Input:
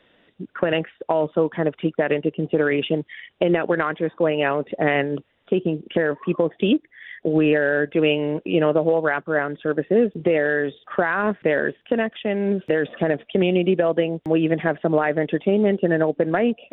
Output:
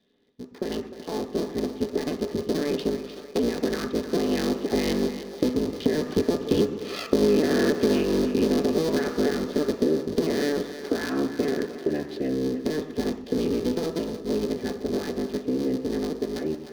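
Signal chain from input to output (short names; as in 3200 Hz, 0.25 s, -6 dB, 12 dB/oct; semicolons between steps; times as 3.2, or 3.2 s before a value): cycle switcher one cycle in 3, inverted; Doppler pass-by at 7.4, 6 m/s, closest 2.6 m; high shelf 2100 Hz +8.5 dB; small resonant body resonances 250/400/1200/1700 Hz, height 10 dB, ringing for 45 ms; reverb RT60 0.55 s, pre-delay 3 ms, DRR 5.5 dB; compressor 6:1, threshold -20 dBFS, peak gain reduction 22 dB; split-band echo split 380 Hz, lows 0.119 s, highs 0.304 s, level -11 dB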